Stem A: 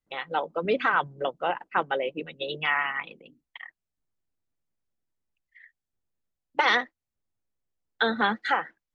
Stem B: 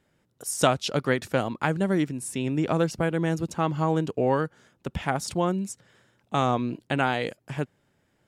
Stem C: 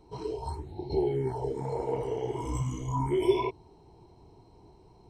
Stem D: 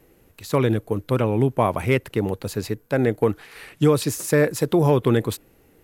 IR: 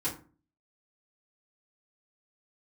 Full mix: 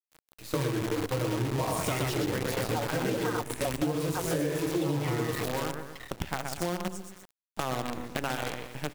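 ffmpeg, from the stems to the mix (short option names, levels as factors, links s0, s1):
-filter_complex "[0:a]equalizer=f=610:w=1.5:g=6,aecho=1:1:5.6:0.92,adelay=2400,volume=0.841[s0];[1:a]adelay=1250,volume=0.708,asplit=3[s1][s2][s3];[s2]volume=0.126[s4];[s3]volume=0.501[s5];[2:a]adelay=1100,volume=0.944,asplit=2[s6][s7];[s7]volume=0.355[s8];[3:a]flanger=delay=0.7:depth=9.4:regen=-20:speed=1.7:shape=triangular,highpass=58,aecho=1:1:6.4:0.35,volume=1,asplit=3[s9][s10][s11];[s10]volume=0.398[s12];[s11]volume=0.596[s13];[s6][s9]amix=inputs=2:normalize=0,flanger=delay=19:depth=6.5:speed=0.94,acompressor=threshold=0.0447:ratio=6,volume=1[s14];[s0][s1]amix=inputs=2:normalize=0,lowshelf=f=62:g=7.5,acompressor=threshold=0.0355:ratio=1.5,volume=1[s15];[4:a]atrim=start_sample=2205[s16];[s4][s12]amix=inputs=2:normalize=0[s17];[s17][s16]afir=irnorm=-1:irlink=0[s18];[s5][s8][s13]amix=inputs=3:normalize=0,aecho=0:1:121|242|363|484|605:1|0.38|0.144|0.0549|0.0209[s19];[s14][s15][s18][s19]amix=inputs=4:normalize=0,acrusher=bits=5:dc=4:mix=0:aa=0.000001,acompressor=threshold=0.0501:ratio=10"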